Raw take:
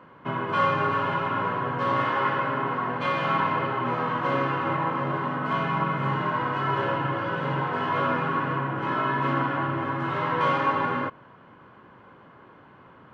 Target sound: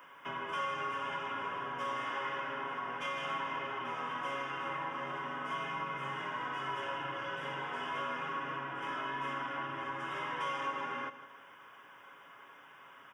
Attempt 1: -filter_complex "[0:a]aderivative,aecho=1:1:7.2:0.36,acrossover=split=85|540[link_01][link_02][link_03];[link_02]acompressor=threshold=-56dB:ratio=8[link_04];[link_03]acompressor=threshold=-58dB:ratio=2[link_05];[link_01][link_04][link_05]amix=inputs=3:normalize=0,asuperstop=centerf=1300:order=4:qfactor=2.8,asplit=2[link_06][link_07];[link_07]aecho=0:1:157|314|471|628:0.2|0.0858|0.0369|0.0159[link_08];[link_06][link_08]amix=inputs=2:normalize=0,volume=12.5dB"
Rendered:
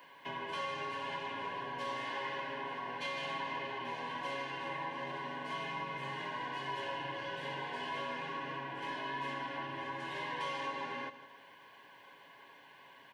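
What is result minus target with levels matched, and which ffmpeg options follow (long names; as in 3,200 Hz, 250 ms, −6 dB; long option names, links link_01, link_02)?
4,000 Hz band +3.0 dB
-filter_complex "[0:a]aderivative,aecho=1:1:7.2:0.36,acrossover=split=85|540[link_01][link_02][link_03];[link_02]acompressor=threshold=-56dB:ratio=8[link_04];[link_03]acompressor=threshold=-58dB:ratio=2[link_05];[link_01][link_04][link_05]amix=inputs=3:normalize=0,asuperstop=centerf=4200:order=4:qfactor=2.8,asplit=2[link_06][link_07];[link_07]aecho=0:1:157|314|471|628:0.2|0.0858|0.0369|0.0159[link_08];[link_06][link_08]amix=inputs=2:normalize=0,volume=12.5dB"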